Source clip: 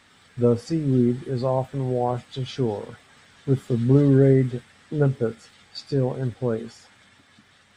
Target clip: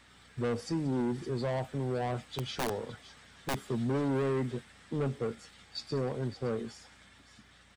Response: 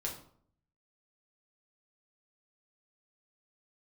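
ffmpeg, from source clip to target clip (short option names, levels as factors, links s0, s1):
-filter_complex "[0:a]acrossover=split=190|3000[s0][s1][s2];[s0]acompressor=threshold=0.02:ratio=6[s3];[s1]asoftclip=type=tanh:threshold=0.0531[s4];[s2]aecho=1:1:178|565:0.133|0.282[s5];[s3][s4][s5]amix=inputs=3:normalize=0,aeval=exprs='val(0)+0.000794*(sin(2*PI*60*n/s)+sin(2*PI*2*60*n/s)/2+sin(2*PI*3*60*n/s)/3+sin(2*PI*4*60*n/s)/4+sin(2*PI*5*60*n/s)/5)':c=same,asettb=1/sr,asplit=3[s6][s7][s8];[s6]atrim=end=2.314[s9];[s7]atrim=start=2.31:end=3.64,asetpts=PTS-STARTPTS,afade=t=in:d=0.004:c=qsin,afade=t=out:st=1.326:d=0.004:c=qsin,aeval=exprs='(mod(14.1*val(0)+1,2)-1)/14.1':c=same[s10];[s8]atrim=start=3.636[s11];[s9][s10]acrossfade=d=0.004:c1=hsin:c2=qsin[s12];[s12][s11]acrossfade=d=0.004:c1=qsin:c2=hsin,volume=0.668"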